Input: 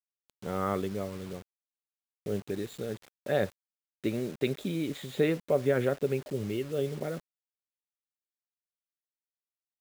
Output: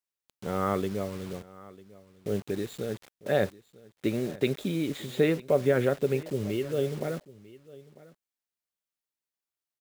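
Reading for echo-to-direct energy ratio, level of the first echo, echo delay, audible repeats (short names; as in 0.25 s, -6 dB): -20.5 dB, -20.5 dB, 0.948 s, 1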